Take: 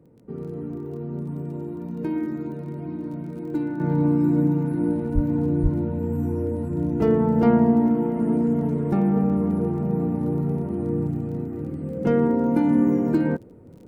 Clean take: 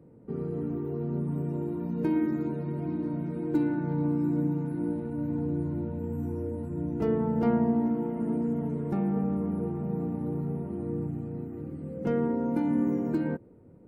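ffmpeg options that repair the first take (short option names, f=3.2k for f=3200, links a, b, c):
-filter_complex "[0:a]adeclick=t=4,asplit=3[a][b][c];[a]afade=t=out:st=5.14:d=0.02[d];[b]highpass=f=140:w=0.5412,highpass=f=140:w=1.3066,afade=t=in:st=5.14:d=0.02,afade=t=out:st=5.26:d=0.02[e];[c]afade=t=in:st=5.26:d=0.02[f];[d][e][f]amix=inputs=3:normalize=0,asplit=3[g][h][i];[g]afade=t=out:st=5.62:d=0.02[j];[h]highpass=f=140:w=0.5412,highpass=f=140:w=1.3066,afade=t=in:st=5.62:d=0.02,afade=t=out:st=5.74:d=0.02[k];[i]afade=t=in:st=5.74:d=0.02[l];[j][k][l]amix=inputs=3:normalize=0,asetnsamples=n=441:p=0,asendcmd='3.8 volume volume -7.5dB',volume=0dB"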